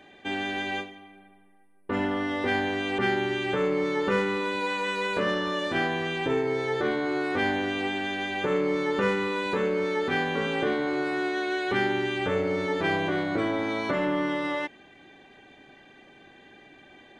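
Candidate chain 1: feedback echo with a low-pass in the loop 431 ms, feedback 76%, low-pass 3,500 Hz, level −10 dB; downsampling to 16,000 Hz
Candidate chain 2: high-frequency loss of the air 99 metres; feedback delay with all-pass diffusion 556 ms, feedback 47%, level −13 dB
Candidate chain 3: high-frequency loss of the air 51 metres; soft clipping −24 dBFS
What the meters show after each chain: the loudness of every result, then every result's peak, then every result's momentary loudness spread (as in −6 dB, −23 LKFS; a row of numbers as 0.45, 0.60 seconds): −26.5, −27.5, −30.0 LKFS; −12.5, −13.0, −24.0 dBFS; 15, 10, 2 LU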